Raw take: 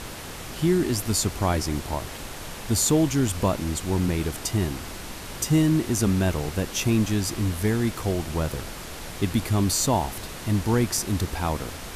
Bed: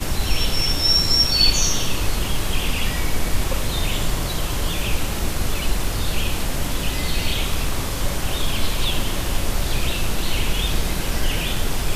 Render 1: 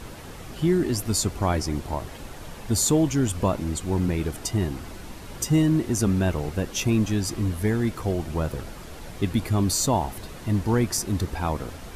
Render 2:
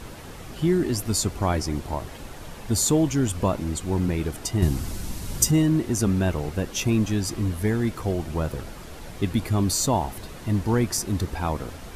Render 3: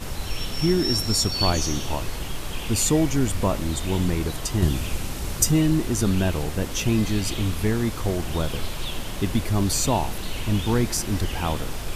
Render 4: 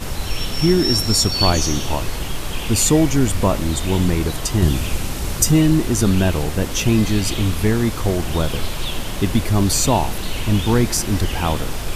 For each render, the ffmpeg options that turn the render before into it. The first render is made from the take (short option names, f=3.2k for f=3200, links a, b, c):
-af "afftdn=nr=8:nf=-37"
-filter_complex "[0:a]asettb=1/sr,asplit=3[a][b][c];[a]atrim=end=4.624[d];[b]atrim=start=4.62:end=5.51,asetpts=PTS-STARTPTS,afade=t=in:d=0.004:c=qsin,afade=t=out:st=0.886:d=0.004:c=qsin,bass=f=250:g=9,treble=f=4k:g=10[e];[c]atrim=start=5.506[f];[d][e]acrossfade=d=0.004:c1=hsin:c2=qsin[g];[g][f]acrossfade=d=0.004:c1=qsin:c2=hsin"
-filter_complex "[1:a]volume=-9dB[a];[0:a][a]amix=inputs=2:normalize=0"
-af "volume=5.5dB,alimiter=limit=-3dB:level=0:latency=1"